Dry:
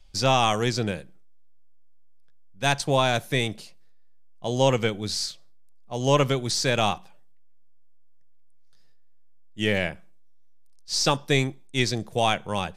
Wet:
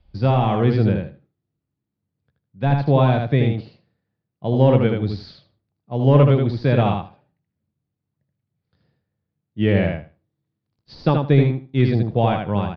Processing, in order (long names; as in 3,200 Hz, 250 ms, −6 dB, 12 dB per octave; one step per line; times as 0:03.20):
high-pass filter 97 Hz
de-essing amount 65%
elliptic low-pass filter 4,600 Hz, stop band 70 dB
spectral tilt −4 dB per octave
automatic gain control gain up to 3 dB
repeating echo 78 ms, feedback 17%, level −4.5 dB
level −1 dB